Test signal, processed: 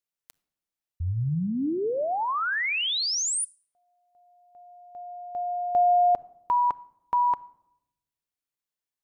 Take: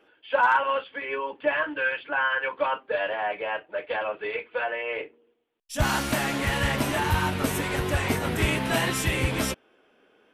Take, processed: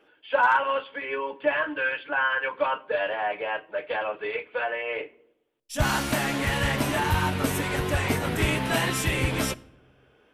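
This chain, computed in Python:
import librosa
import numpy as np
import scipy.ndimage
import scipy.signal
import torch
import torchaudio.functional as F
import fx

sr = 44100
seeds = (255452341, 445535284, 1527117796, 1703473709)

y = fx.room_shoebox(x, sr, seeds[0], volume_m3=2500.0, walls='furnished', distance_m=0.38)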